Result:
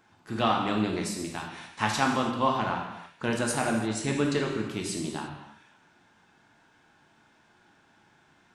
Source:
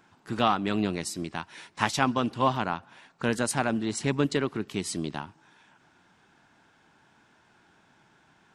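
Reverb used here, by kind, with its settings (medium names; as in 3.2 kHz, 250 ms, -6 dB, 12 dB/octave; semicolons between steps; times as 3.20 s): gated-style reverb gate 370 ms falling, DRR 0 dB; trim -3 dB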